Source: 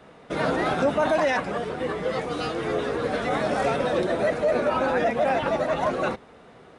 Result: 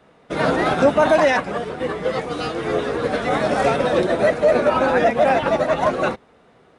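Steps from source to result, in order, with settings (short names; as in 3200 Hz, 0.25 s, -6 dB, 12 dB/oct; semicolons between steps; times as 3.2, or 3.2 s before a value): upward expander 1.5:1, over -42 dBFS; gain +8 dB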